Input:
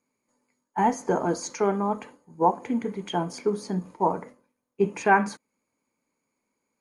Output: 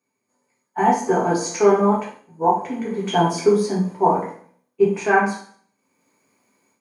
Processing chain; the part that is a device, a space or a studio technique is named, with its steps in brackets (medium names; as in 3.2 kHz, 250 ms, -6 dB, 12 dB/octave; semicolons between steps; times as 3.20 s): far laptop microphone (reverberation RT60 0.55 s, pre-delay 3 ms, DRR -4.5 dB; high-pass 120 Hz; level rider gain up to 13 dB); trim -3.5 dB